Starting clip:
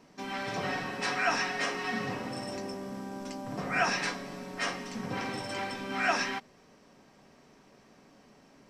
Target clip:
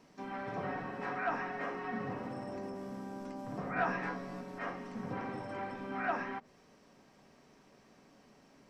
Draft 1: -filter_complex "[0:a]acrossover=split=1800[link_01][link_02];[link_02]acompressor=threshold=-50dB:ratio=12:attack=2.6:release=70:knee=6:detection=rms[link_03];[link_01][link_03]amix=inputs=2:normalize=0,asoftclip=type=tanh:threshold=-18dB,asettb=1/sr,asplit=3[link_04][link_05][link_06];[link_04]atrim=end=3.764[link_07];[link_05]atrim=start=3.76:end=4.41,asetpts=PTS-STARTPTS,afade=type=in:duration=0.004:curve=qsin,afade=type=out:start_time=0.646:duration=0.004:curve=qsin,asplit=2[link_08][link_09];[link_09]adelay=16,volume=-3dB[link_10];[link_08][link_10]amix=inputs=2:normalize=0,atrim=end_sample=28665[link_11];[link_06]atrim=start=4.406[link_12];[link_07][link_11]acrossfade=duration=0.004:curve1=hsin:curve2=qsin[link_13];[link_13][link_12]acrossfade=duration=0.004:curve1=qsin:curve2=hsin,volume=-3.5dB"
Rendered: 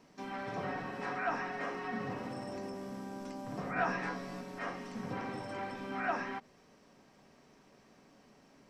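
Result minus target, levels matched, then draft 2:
downward compressor: peak gain reduction −7.5 dB
-filter_complex "[0:a]acrossover=split=1800[link_01][link_02];[link_02]acompressor=threshold=-58dB:ratio=12:attack=2.6:release=70:knee=6:detection=rms[link_03];[link_01][link_03]amix=inputs=2:normalize=0,asoftclip=type=tanh:threshold=-18dB,asettb=1/sr,asplit=3[link_04][link_05][link_06];[link_04]atrim=end=3.764[link_07];[link_05]atrim=start=3.76:end=4.41,asetpts=PTS-STARTPTS,afade=type=in:duration=0.004:curve=qsin,afade=type=out:start_time=0.646:duration=0.004:curve=qsin,asplit=2[link_08][link_09];[link_09]adelay=16,volume=-3dB[link_10];[link_08][link_10]amix=inputs=2:normalize=0,atrim=end_sample=28665[link_11];[link_06]atrim=start=4.406[link_12];[link_07][link_11]acrossfade=duration=0.004:curve1=hsin:curve2=qsin[link_13];[link_13][link_12]acrossfade=duration=0.004:curve1=qsin:curve2=hsin,volume=-3.5dB"

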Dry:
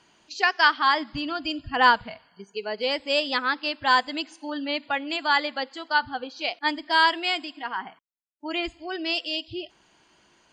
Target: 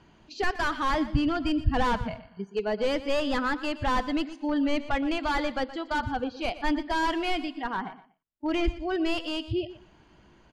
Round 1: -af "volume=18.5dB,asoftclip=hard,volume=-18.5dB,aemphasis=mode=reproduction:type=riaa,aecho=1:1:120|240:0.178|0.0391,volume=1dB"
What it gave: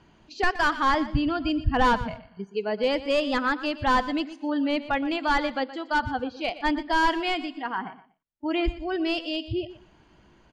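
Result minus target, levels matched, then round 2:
gain into a clipping stage and back: distortion −5 dB
-af "volume=25dB,asoftclip=hard,volume=-25dB,aemphasis=mode=reproduction:type=riaa,aecho=1:1:120|240:0.178|0.0391,volume=1dB"

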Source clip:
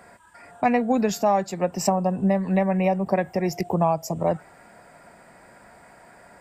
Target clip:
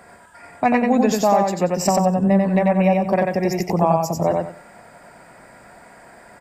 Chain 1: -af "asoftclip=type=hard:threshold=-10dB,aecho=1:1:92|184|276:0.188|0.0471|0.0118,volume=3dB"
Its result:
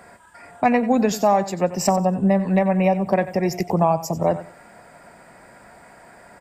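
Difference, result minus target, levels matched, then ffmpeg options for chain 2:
echo-to-direct −11.5 dB
-af "asoftclip=type=hard:threshold=-10dB,aecho=1:1:92|184|276|368:0.708|0.177|0.0442|0.0111,volume=3dB"

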